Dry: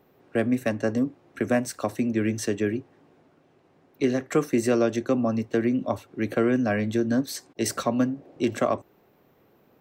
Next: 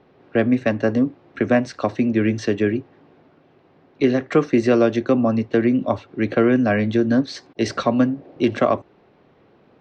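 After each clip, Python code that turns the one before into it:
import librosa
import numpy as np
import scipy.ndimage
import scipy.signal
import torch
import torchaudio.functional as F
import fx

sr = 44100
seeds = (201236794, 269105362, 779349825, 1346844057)

y = scipy.signal.sosfilt(scipy.signal.butter(4, 4700.0, 'lowpass', fs=sr, output='sos'), x)
y = y * 10.0 ** (6.0 / 20.0)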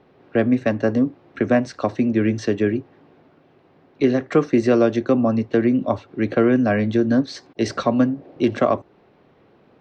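y = fx.dynamic_eq(x, sr, hz=2600.0, q=0.97, threshold_db=-40.0, ratio=4.0, max_db=-3)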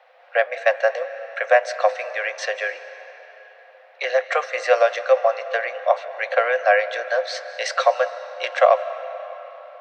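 y = scipy.signal.sosfilt(scipy.signal.cheby1(6, 6, 500.0, 'highpass', fs=sr, output='sos'), x)
y = fx.rev_freeverb(y, sr, rt60_s=4.2, hf_ratio=0.7, predelay_ms=115, drr_db=12.5)
y = y * 10.0 ** (8.5 / 20.0)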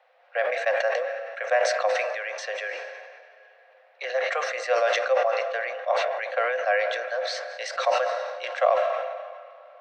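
y = fx.sustainer(x, sr, db_per_s=34.0)
y = y * 10.0 ** (-8.0 / 20.0)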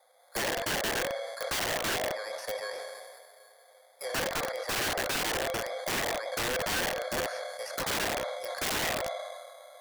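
y = fx.bit_reversed(x, sr, seeds[0], block=16)
y = fx.env_lowpass_down(y, sr, base_hz=1300.0, full_db=-20.5)
y = (np.mod(10.0 ** (24.0 / 20.0) * y + 1.0, 2.0) - 1.0) / 10.0 ** (24.0 / 20.0)
y = y * 10.0 ** (-1.5 / 20.0)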